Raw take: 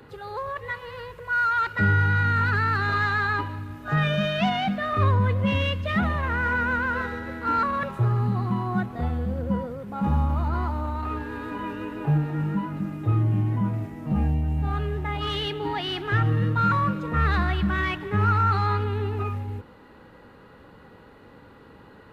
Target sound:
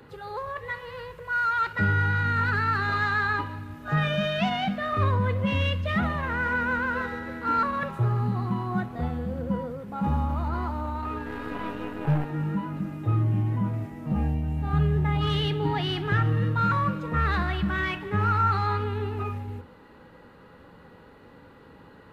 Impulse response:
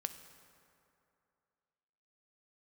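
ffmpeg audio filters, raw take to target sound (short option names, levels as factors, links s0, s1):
-filter_complex "[0:a]asettb=1/sr,asplit=3[s0][s1][s2];[s0]atrim=end=11.264[s3];[s1]atrim=start=11.26:end=12.25,asetpts=PTS-STARTPTS,afade=t=in:d=0.004:c=qsin,afade=t=out:st=0.986:d=0.004:c=qsin,aeval=exprs='0.237*(cos(1*acos(clip(val(0)/0.237,-1,1)))-cos(1*PI/2))+0.0266*(cos(8*acos(clip(val(0)/0.237,-1,1)))-cos(8*PI/2))':c=same[s4];[s2]atrim=start=12.246[s5];[s3][s4]acrossfade=d=0.004:c1=hsin:c2=qsin[s6];[s6][s5]acrossfade=d=0.004:c1=qsin:c2=hsin,asettb=1/sr,asplit=3[s7][s8][s9];[s7]atrim=end=14.734[s10];[s8]atrim=start=14.73:end=16.13,asetpts=PTS-STARTPTS,afade=t=in:d=0.004:c=qsin,afade=t=out:st=1.396:d=0.004:c=qsin,equalizer=f=130:w=0.95:g=13[s11];[s9]atrim=start=16.126[s12];[s10][s11]acrossfade=d=0.004:c1=hsin:c2=qsin[s13];[s13][s12]acrossfade=d=0.004:c1=qsin:c2=hsin[s14];[1:a]atrim=start_sample=2205,atrim=end_sample=3087[s15];[s14][s15]afir=irnorm=-1:irlink=0"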